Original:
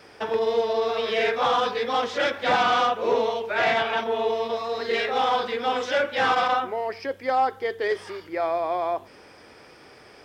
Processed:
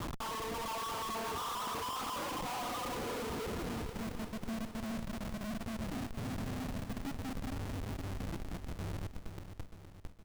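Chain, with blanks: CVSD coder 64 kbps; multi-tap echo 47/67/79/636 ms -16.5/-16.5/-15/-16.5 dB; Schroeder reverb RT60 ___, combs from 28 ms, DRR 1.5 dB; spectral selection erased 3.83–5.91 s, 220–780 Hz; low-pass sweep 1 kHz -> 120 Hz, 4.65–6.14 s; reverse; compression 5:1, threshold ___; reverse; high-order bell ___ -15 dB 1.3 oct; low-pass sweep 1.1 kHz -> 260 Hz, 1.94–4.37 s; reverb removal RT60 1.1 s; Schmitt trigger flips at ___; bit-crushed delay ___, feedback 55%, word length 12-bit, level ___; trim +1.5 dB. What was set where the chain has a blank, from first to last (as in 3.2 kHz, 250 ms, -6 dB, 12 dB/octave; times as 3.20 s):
3.6 s, -29 dBFS, 590 Hz, -48.5 dBFS, 466 ms, -9 dB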